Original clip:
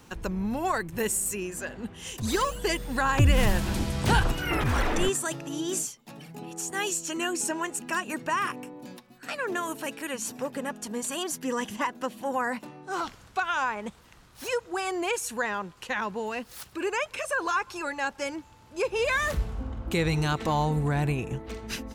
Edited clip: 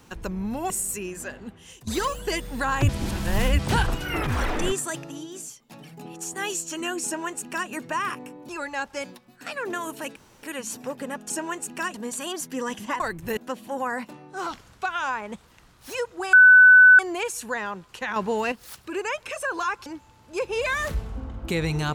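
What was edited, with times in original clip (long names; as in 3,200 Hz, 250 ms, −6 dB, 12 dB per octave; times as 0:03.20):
0:00.70–0:01.07: move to 0:11.91
0:01.63–0:02.24: fade out, to −14.5 dB
0:03.26–0:03.96: reverse
0:05.42–0:06.04: duck −9 dB, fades 0.24 s
0:07.42–0:08.06: duplicate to 0:10.85
0:09.98: splice in room tone 0.27 s
0:14.87: insert tone 1,500 Hz −8 dBFS 0.66 s
0:16.04–0:16.40: clip gain +7 dB
0:17.74–0:18.29: move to 0:08.86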